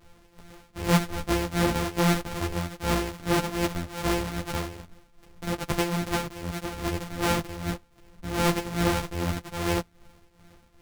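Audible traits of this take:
a buzz of ramps at a fixed pitch in blocks of 256 samples
tremolo triangle 2.5 Hz, depth 75%
a shimmering, thickened sound

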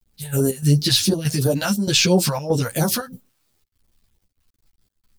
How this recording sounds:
phaser sweep stages 2, 2.9 Hz, lowest notch 310–2,500 Hz
a quantiser's noise floor 12 bits, dither none
chopped level 1.6 Hz, depth 65%, duty 80%
a shimmering, thickened sound

